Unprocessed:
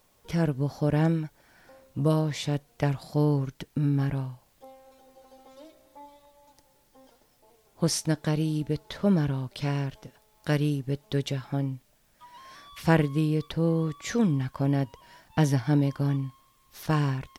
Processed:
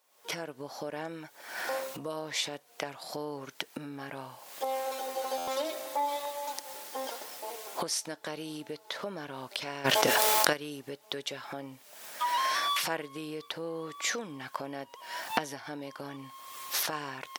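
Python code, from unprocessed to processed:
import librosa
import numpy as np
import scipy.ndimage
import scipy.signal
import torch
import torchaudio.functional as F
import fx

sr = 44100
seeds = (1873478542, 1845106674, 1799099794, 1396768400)

y = fx.recorder_agc(x, sr, target_db=-13.0, rise_db_per_s=55.0, max_gain_db=30)
y = scipy.signal.sosfilt(scipy.signal.butter(2, 540.0, 'highpass', fs=sr, output='sos'), y)
y = fx.buffer_glitch(y, sr, at_s=(5.37,), block=512, repeats=8)
y = fx.env_flatten(y, sr, amount_pct=100, at=(9.84, 10.52), fade=0.02)
y = F.gain(torch.from_numpy(y), -7.5).numpy()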